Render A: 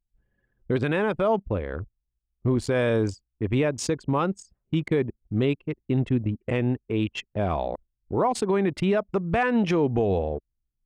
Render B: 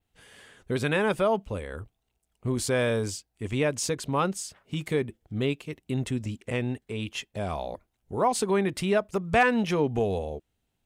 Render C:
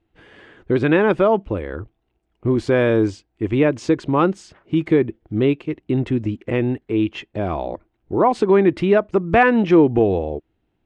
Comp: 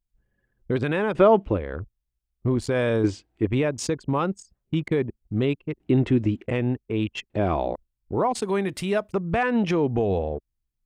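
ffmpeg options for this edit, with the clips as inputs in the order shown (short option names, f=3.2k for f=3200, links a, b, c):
-filter_complex "[2:a]asplit=4[a][b][c][d];[0:a]asplit=6[e][f][g][h][i][j];[e]atrim=end=1.152[k];[a]atrim=start=1.148:end=1.572[l];[f]atrim=start=1.568:end=3.042[m];[b]atrim=start=3.038:end=3.452[n];[g]atrim=start=3.448:end=5.802[o];[c]atrim=start=5.798:end=6.462[p];[h]atrim=start=6.458:end=7.302[q];[d]atrim=start=7.298:end=7.732[r];[i]atrim=start=7.728:end=8.422[s];[1:a]atrim=start=8.418:end=9.122[t];[j]atrim=start=9.118[u];[k][l]acrossfade=d=0.004:c1=hsin:c2=hsin[v];[v][m]acrossfade=d=0.004:c1=hsin:c2=hsin[w];[w][n]acrossfade=d=0.004:c1=hsin:c2=hsin[x];[x][o]acrossfade=d=0.004:c1=hsin:c2=hsin[y];[y][p]acrossfade=d=0.004:c1=hsin:c2=hsin[z];[z][q]acrossfade=d=0.004:c1=hsin:c2=hsin[aa];[aa][r]acrossfade=d=0.004:c1=hsin:c2=hsin[ab];[ab][s]acrossfade=d=0.004:c1=hsin:c2=hsin[ac];[ac][t]acrossfade=d=0.004:c1=hsin:c2=hsin[ad];[ad][u]acrossfade=d=0.004:c1=hsin:c2=hsin"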